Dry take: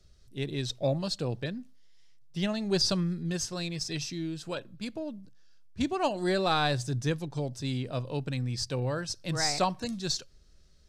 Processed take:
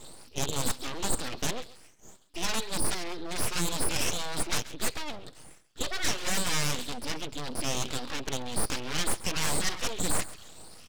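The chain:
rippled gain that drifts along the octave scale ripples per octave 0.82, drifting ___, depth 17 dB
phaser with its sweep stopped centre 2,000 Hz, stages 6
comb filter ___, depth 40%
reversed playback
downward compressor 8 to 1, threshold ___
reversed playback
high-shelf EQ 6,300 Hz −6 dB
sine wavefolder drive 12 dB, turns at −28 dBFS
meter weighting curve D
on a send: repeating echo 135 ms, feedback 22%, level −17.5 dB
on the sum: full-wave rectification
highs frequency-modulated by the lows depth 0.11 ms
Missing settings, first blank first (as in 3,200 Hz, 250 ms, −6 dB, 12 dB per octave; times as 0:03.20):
+1.9 Hz, 6.4 ms, −37 dBFS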